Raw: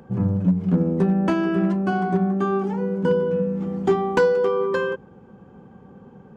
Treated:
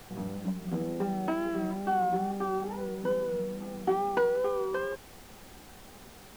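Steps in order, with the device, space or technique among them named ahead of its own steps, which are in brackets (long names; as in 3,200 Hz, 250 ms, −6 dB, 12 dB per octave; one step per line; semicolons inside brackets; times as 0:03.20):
horn gramophone (band-pass filter 230–3,300 Hz; parametric band 750 Hz +9 dB 0.24 octaves; tape wow and flutter; pink noise bed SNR 19 dB)
level −9 dB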